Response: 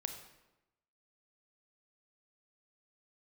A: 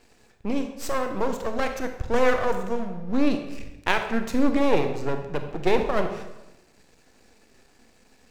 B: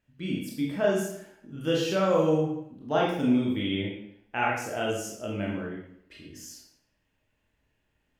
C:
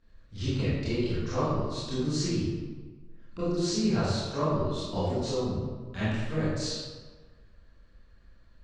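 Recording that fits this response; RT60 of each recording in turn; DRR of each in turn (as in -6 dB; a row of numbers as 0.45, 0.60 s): A; 0.95, 0.70, 1.4 s; 6.0, -3.5, -12.0 dB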